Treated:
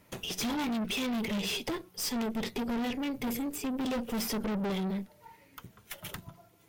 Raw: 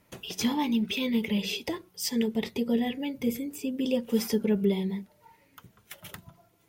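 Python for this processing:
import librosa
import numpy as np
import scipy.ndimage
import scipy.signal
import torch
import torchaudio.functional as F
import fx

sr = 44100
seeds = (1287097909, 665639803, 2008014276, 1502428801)

y = fx.tube_stage(x, sr, drive_db=36.0, bias=0.6)
y = y * librosa.db_to_amplitude(6.0)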